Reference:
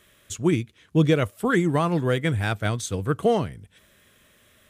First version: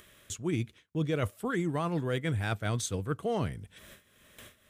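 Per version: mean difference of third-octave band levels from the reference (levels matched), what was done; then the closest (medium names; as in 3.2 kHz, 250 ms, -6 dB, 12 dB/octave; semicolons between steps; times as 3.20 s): 2.5 dB: reverse; compression 6:1, threshold -28 dBFS, peak gain reduction 13 dB; reverse; gate with hold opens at -46 dBFS; upward compressor, threshold -41 dBFS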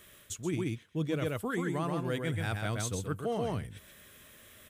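6.5 dB: treble shelf 11 kHz +9 dB; delay 130 ms -4.5 dB; reverse; compression 4:1, threshold -32 dBFS, peak gain reduction 15.5 dB; reverse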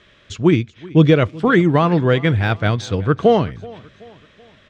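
4.0 dB: low-pass 5 kHz 24 dB/octave; feedback delay 378 ms, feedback 46%, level -22 dB; de-esser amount 85%; trim +7.5 dB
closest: first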